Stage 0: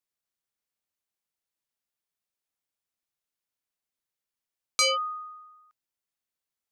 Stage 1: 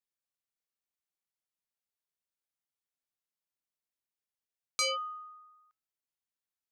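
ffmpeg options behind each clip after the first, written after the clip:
ffmpeg -i in.wav -af "bandreject=frequency=429.2:width_type=h:width=4,bandreject=frequency=858.4:width_type=h:width=4,bandreject=frequency=1287.6:width_type=h:width=4,bandreject=frequency=1716.8:width_type=h:width=4,bandreject=frequency=2146:width_type=h:width=4,bandreject=frequency=2575.2:width_type=h:width=4,bandreject=frequency=3004.4:width_type=h:width=4,bandreject=frequency=3433.6:width_type=h:width=4,bandreject=frequency=3862.8:width_type=h:width=4,bandreject=frequency=4292:width_type=h:width=4,bandreject=frequency=4721.2:width_type=h:width=4,bandreject=frequency=5150.4:width_type=h:width=4,bandreject=frequency=5579.6:width_type=h:width=4,bandreject=frequency=6008.8:width_type=h:width=4,bandreject=frequency=6438:width_type=h:width=4,volume=-7dB" out.wav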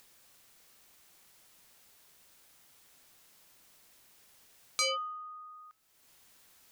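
ffmpeg -i in.wav -af "acompressor=mode=upward:threshold=-38dB:ratio=2.5" out.wav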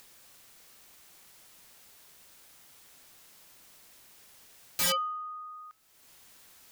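ffmpeg -i in.wav -af "aeval=exprs='(mod(26.6*val(0)+1,2)-1)/26.6':channel_layout=same,volume=5.5dB" out.wav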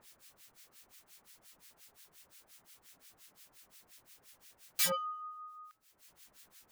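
ffmpeg -i in.wav -filter_complex "[0:a]acrossover=split=1400[link_01][link_02];[link_01]aeval=exprs='val(0)*(1-1/2+1/2*cos(2*PI*5.7*n/s))':channel_layout=same[link_03];[link_02]aeval=exprs='val(0)*(1-1/2-1/2*cos(2*PI*5.7*n/s))':channel_layout=same[link_04];[link_03][link_04]amix=inputs=2:normalize=0" out.wav

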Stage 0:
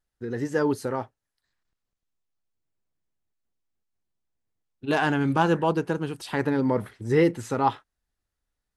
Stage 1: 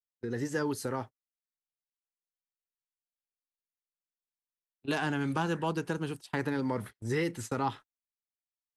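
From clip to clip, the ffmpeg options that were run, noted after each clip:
ffmpeg -i in.wav -filter_complex "[0:a]agate=range=-33dB:threshold=-36dB:ratio=16:detection=peak,bass=frequency=250:gain=1,treble=frequency=4000:gain=5,acrossover=split=370|1000[link_01][link_02][link_03];[link_01]acompressor=threshold=-29dB:ratio=4[link_04];[link_02]acompressor=threshold=-35dB:ratio=4[link_05];[link_03]acompressor=threshold=-30dB:ratio=4[link_06];[link_04][link_05][link_06]amix=inputs=3:normalize=0,volume=-3dB" out.wav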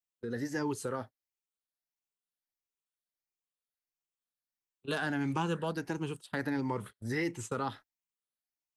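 ffmpeg -i in.wav -af "afftfilt=real='re*pow(10,8/40*sin(2*PI*(0.71*log(max(b,1)*sr/1024/100)/log(2)-(1.5)*(pts-256)/sr)))':imag='im*pow(10,8/40*sin(2*PI*(0.71*log(max(b,1)*sr/1024/100)/log(2)-(1.5)*(pts-256)/sr)))':win_size=1024:overlap=0.75,volume=-3dB" out.wav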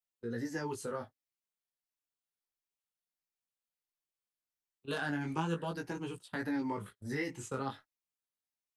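ffmpeg -i in.wav -af "flanger=delay=16.5:depth=5.9:speed=0.33" out.wav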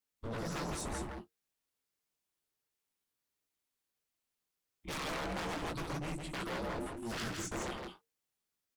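ffmpeg -i in.wav -af "afreqshift=-460,aeval=exprs='0.0112*(abs(mod(val(0)/0.0112+3,4)-2)-1)':channel_layout=same,aecho=1:1:166:0.596,volume=4.5dB" out.wav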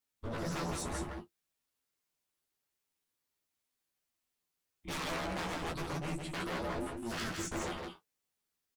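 ffmpeg -i in.wav -filter_complex "[0:a]asplit=2[link_01][link_02];[link_02]adelay=12,volume=-5dB[link_03];[link_01][link_03]amix=inputs=2:normalize=0" out.wav

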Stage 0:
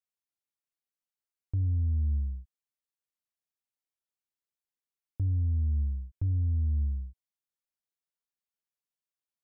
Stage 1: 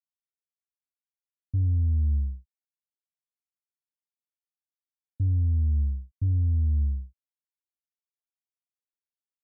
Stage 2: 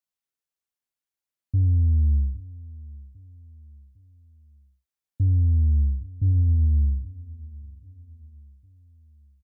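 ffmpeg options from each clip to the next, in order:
ffmpeg -i in.wav -af "agate=range=-33dB:threshold=-30dB:ratio=3:detection=peak,volume=4dB" out.wav
ffmpeg -i in.wav -af "aecho=1:1:805|1610|2415:0.0944|0.0415|0.0183,volume=4dB" out.wav

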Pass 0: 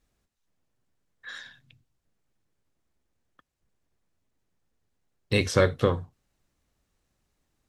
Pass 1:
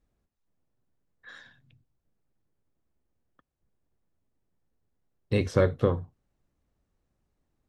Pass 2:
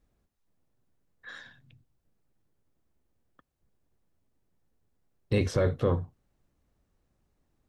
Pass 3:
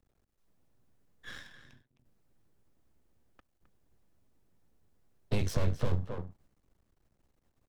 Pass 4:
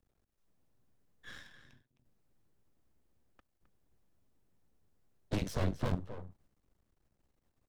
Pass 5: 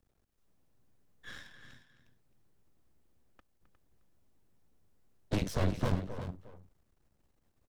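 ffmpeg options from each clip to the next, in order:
ffmpeg -i in.wav -af "tiltshelf=frequency=1500:gain=6,volume=-6dB" out.wav
ffmpeg -i in.wav -af "alimiter=limit=-19dB:level=0:latency=1:release=13,volume=3dB" out.wav
ffmpeg -i in.wav -filter_complex "[0:a]aeval=exprs='max(val(0),0)':channel_layout=same,asplit=2[link_01][link_02];[link_02]adelay=262.4,volume=-11dB,highshelf=frequency=4000:gain=-5.9[link_03];[link_01][link_03]amix=inputs=2:normalize=0,acrossover=split=160|3000[link_04][link_05][link_06];[link_05]acompressor=threshold=-38dB:ratio=6[link_07];[link_04][link_07][link_06]amix=inputs=3:normalize=0,volume=3.5dB" out.wav
ffmpeg -i in.wav -af "aeval=exprs='0.178*(cos(1*acos(clip(val(0)/0.178,-1,1)))-cos(1*PI/2))+0.0631*(cos(7*acos(clip(val(0)/0.178,-1,1)))-cos(7*PI/2))':channel_layout=same,volume=-7dB" out.wav
ffmpeg -i in.wav -af "aecho=1:1:357:0.282,volume=2.5dB" out.wav

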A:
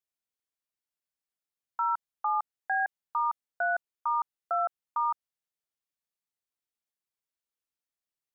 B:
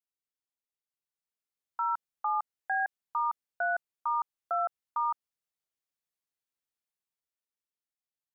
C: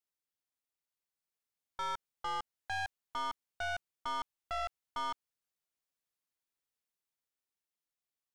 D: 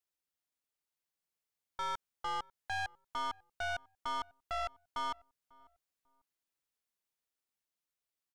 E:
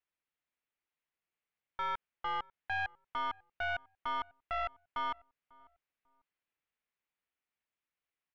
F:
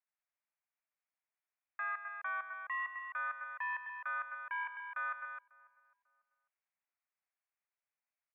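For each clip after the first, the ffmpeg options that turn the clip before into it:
ffmpeg -i in.wav -af "dynaudnorm=framelen=200:gausssize=13:maxgain=6.5dB,volume=-8dB" out.wav
ffmpeg -i in.wav -af "aeval=exprs='(tanh(56.2*val(0)+0.4)-tanh(0.4))/56.2':channel_layout=same,volume=1dB" out.wav
ffmpeg -i in.wav -filter_complex "[0:a]asplit=2[link_01][link_02];[link_02]adelay=545,lowpass=frequency=890:poles=1,volume=-22dB,asplit=2[link_03][link_04];[link_04]adelay=545,lowpass=frequency=890:poles=1,volume=0.31[link_05];[link_01][link_03][link_05]amix=inputs=3:normalize=0" out.wav
ffmpeg -i in.wav -af "lowpass=frequency=2400:width_type=q:width=1.6" out.wav
ffmpeg -i in.wav -af "aecho=1:1:125.4|259.5:0.282|0.398,highpass=frequency=280:width_type=q:width=0.5412,highpass=frequency=280:width_type=q:width=1.307,lowpass=frequency=2100:width_type=q:width=0.5176,lowpass=frequency=2100:width_type=q:width=0.7071,lowpass=frequency=2100:width_type=q:width=1.932,afreqshift=290,volume=-2.5dB" out.wav

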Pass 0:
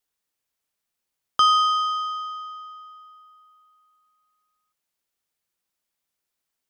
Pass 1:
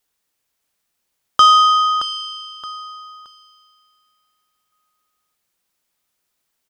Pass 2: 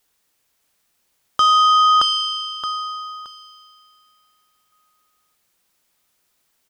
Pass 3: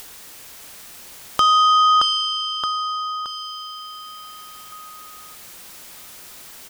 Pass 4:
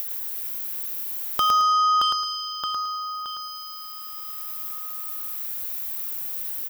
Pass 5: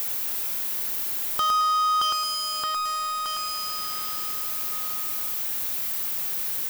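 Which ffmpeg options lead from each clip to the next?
ffmpeg -i in.wav -af "aecho=1:1:622|1244|1866:0.316|0.0917|0.0266,acontrast=38,volume=2.5dB" out.wav
ffmpeg -i in.wav -af "alimiter=limit=-14dB:level=0:latency=1,volume=6dB" out.wav
ffmpeg -i in.wav -af "acompressor=mode=upward:threshold=-17dB:ratio=2.5,volume=-1dB" out.wav
ffmpeg -i in.wav -filter_complex "[0:a]aexciter=amount=6.4:drive=3.9:freq=11000,asplit=2[link_01][link_02];[link_02]aecho=0:1:109|218|327|436:0.596|0.167|0.0467|0.0131[link_03];[link_01][link_03]amix=inputs=2:normalize=0,volume=-5.5dB" out.wav
ffmpeg -i in.wav -af "aeval=exprs='val(0)+0.5*0.0944*sgn(val(0))':channel_layout=same,volume=-5.5dB" out.wav

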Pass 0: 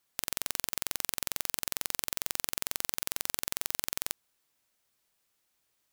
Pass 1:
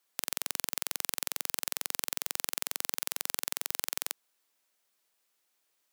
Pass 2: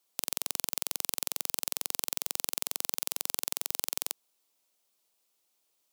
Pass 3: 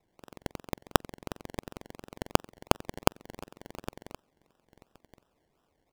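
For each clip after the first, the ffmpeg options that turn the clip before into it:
ffmpeg -i in.wav -af "highpass=280" out.wav
ffmpeg -i in.wav -af "equalizer=frequency=1700:width=1.6:gain=-9,volume=1.5dB" out.wav
ffmpeg -i in.wav -af "highpass=84,aecho=1:1:1117:0.0668,acrusher=samples=28:mix=1:aa=0.000001:lfo=1:lforange=16.8:lforate=2.8,volume=1dB" out.wav

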